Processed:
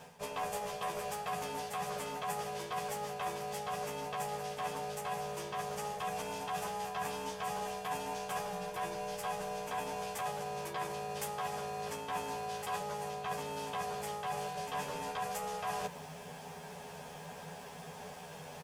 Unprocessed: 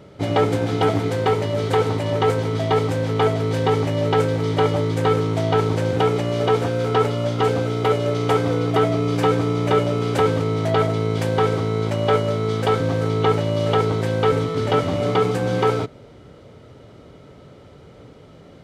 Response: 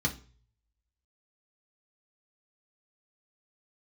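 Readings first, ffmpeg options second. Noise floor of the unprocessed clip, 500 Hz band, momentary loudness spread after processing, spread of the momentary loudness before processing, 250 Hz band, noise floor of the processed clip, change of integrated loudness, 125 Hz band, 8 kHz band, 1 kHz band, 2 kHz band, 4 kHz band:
−45 dBFS, −21.5 dB, 9 LU, 2 LU, −25.0 dB, −48 dBFS, −19.0 dB, −28.5 dB, −4.0 dB, −12.0 dB, −13.0 dB, −14.5 dB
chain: -filter_complex "[0:a]highpass=60,aeval=exprs='val(0)*sin(2*PI*310*n/s)':channel_layout=same,equalizer=frequency=160:width_type=o:width=0.33:gain=10,equalizer=frequency=315:width_type=o:width=0.33:gain=-11,equalizer=frequency=4000:width_type=o:width=0.33:gain=-8,areverse,acompressor=threshold=-36dB:ratio=8,areverse,aemphasis=mode=production:type=riaa,asplit=2[link_01][link_02];[link_02]adelay=12,volume=-2dB[link_03];[link_01][link_03]amix=inputs=2:normalize=0,volume=1dB"

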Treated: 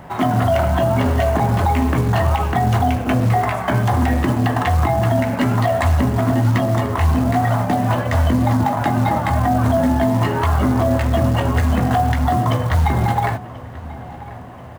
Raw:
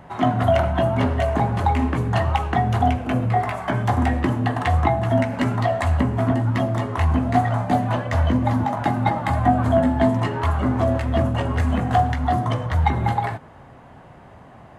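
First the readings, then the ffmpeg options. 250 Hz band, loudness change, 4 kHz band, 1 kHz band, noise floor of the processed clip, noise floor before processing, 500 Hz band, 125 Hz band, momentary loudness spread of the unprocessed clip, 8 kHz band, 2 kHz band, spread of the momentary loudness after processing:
+3.5 dB, +3.5 dB, +4.0 dB, +2.5 dB, −34 dBFS, −45 dBFS, +3.0 dB, +4.0 dB, 4 LU, can't be measured, +3.5 dB, 3 LU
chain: -filter_complex "[0:a]alimiter=limit=-14.5dB:level=0:latency=1:release=56,acrusher=bits=6:mode=log:mix=0:aa=0.000001,asplit=2[link_01][link_02];[link_02]adelay=1037,lowpass=frequency=3700:poles=1,volume=-18dB,asplit=2[link_03][link_04];[link_04]adelay=1037,lowpass=frequency=3700:poles=1,volume=0.53,asplit=2[link_05][link_06];[link_06]adelay=1037,lowpass=frequency=3700:poles=1,volume=0.53,asplit=2[link_07][link_08];[link_08]adelay=1037,lowpass=frequency=3700:poles=1,volume=0.53[link_09];[link_01][link_03][link_05][link_07][link_09]amix=inputs=5:normalize=0,volume=6dB"

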